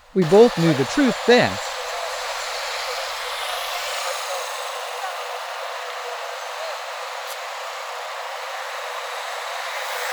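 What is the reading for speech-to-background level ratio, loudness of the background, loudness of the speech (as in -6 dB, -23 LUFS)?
10.5 dB, -27.5 LUFS, -17.0 LUFS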